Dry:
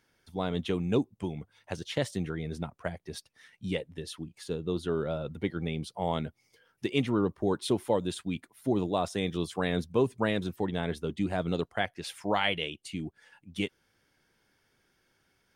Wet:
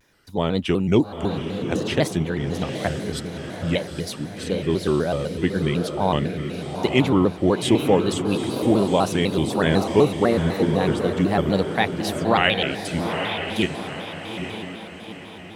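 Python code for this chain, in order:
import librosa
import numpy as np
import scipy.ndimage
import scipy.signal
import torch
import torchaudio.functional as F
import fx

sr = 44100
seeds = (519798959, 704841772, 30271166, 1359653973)

y = fx.envelope_sharpen(x, sr, power=2.0, at=(10.18, 10.81))
y = fx.echo_diffused(y, sr, ms=847, feedback_pct=48, wet_db=-6)
y = fx.vibrato_shape(y, sr, shape='square', rate_hz=4.0, depth_cents=160.0)
y = y * librosa.db_to_amplitude(9.0)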